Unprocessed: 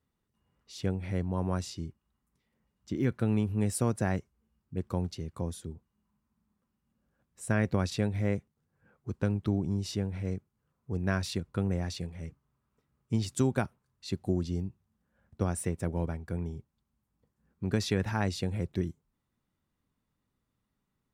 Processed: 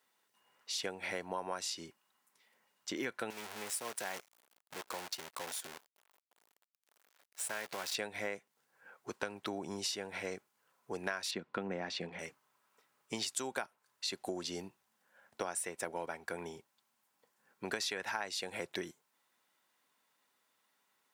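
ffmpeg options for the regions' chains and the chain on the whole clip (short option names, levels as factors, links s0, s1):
-filter_complex "[0:a]asettb=1/sr,asplit=3[s0][s1][s2];[s0]atrim=end=3.304[s3];[s1]atrim=start=3.3:end=7.95,asetpts=PTS-STARTPTS,afade=t=in:d=0.004:c=qsin,afade=t=out:st=4.646:d=0.004:c=qsin,acompressor=threshold=0.00398:ratio=2:attack=3.2:release=140:knee=1:detection=peak,acrusher=bits=9:dc=4:mix=0:aa=0.000001[s4];[s2]atrim=start=7.946[s5];[s3][s4]acrossfade=d=0.004:c1=hsin:c2=qsin[s6];[s6][s5]acrossfade=d=0.004:c1=qsin:c2=hsin,asettb=1/sr,asplit=3[s7][s8][s9];[s7]atrim=end=11.314[s10];[s8]atrim=start=11.31:end=12.19,asetpts=PTS-STARTPTS,afade=t=in:d=0.004:c=qsin,afade=t=out:st=0.876:d=0.004:c=qsin,lowpass=3300,equalizer=f=210:w=0.87:g=10.5[s11];[s9]atrim=start=12.186[s12];[s10][s11]acrossfade=d=0.004:c1=hsin:c2=qsin[s13];[s13][s12]acrossfade=d=0.004:c1=qsin:c2=hsin,highpass=760,bandreject=f=1200:w=11,acompressor=threshold=0.00447:ratio=6,volume=3.98"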